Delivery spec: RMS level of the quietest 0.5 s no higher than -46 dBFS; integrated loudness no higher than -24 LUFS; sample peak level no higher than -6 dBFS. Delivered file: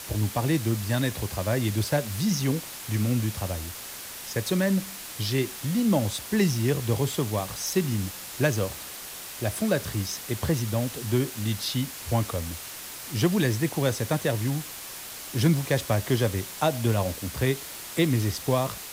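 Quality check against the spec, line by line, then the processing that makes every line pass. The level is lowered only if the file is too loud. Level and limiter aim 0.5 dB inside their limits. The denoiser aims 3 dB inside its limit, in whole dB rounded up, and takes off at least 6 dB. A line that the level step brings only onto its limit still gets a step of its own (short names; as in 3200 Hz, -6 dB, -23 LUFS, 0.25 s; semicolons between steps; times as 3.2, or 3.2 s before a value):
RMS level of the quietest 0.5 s -39 dBFS: fail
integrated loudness -27.0 LUFS: OK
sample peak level -10.5 dBFS: OK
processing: denoiser 10 dB, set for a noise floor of -39 dBFS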